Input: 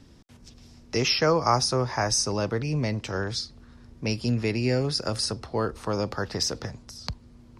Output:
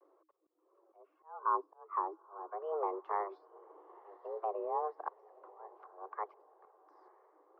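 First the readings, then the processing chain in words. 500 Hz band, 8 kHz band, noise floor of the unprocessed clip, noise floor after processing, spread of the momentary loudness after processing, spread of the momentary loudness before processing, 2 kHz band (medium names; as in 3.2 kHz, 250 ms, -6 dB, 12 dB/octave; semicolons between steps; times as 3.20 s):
-13.5 dB, under -40 dB, -53 dBFS, -76 dBFS, 21 LU, 15 LU, -22.5 dB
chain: reverb removal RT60 0.59 s; low-pass that closes with the level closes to 760 Hz, closed at -22.5 dBFS; frequency shift +290 Hz; peak limiter -22.5 dBFS, peak gain reduction 10 dB; slow attack 418 ms; wow and flutter 130 cents; resonant low-pass 1.1 kHz, resonance Q 8; on a send: echo that smears into a reverb 935 ms, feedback 52%, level -14.5 dB; on the sum: upward expansion 1.5:1, over -42 dBFS; trim -7 dB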